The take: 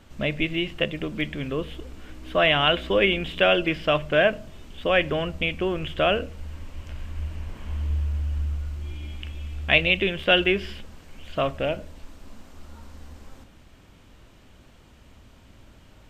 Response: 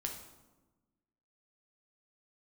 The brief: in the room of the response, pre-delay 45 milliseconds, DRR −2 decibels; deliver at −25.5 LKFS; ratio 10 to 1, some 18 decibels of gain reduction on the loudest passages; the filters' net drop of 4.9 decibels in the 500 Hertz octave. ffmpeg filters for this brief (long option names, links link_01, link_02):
-filter_complex "[0:a]equalizer=frequency=500:width_type=o:gain=-6.5,acompressor=threshold=-33dB:ratio=10,asplit=2[link_01][link_02];[1:a]atrim=start_sample=2205,adelay=45[link_03];[link_02][link_03]afir=irnorm=-1:irlink=0,volume=2dB[link_04];[link_01][link_04]amix=inputs=2:normalize=0,volume=8dB"